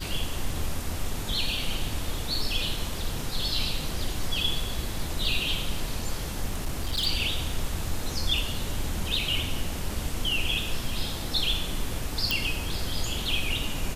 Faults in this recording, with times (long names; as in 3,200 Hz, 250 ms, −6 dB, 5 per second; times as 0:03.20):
0:06.48–0:07.07: clipping −23.5 dBFS
0:12.31: click